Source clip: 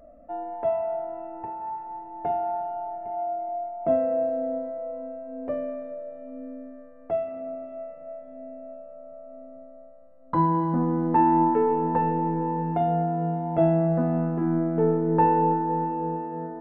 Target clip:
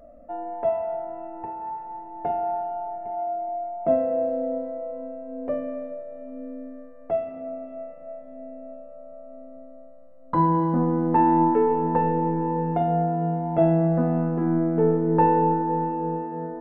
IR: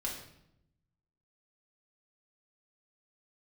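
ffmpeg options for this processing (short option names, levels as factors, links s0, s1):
-filter_complex "[0:a]asplit=2[s0][s1];[s1]equalizer=f=520:t=o:w=0.77:g=9.5[s2];[1:a]atrim=start_sample=2205[s3];[s2][s3]afir=irnorm=-1:irlink=0,volume=0.188[s4];[s0][s4]amix=inputs=2:normalize=0"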